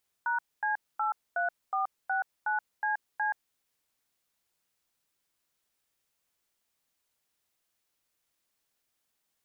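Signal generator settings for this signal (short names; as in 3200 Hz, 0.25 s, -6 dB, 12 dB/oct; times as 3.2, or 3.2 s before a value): DTMF "#C83469CC", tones 0.127 s, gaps 0.24 s, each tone -29 dBFS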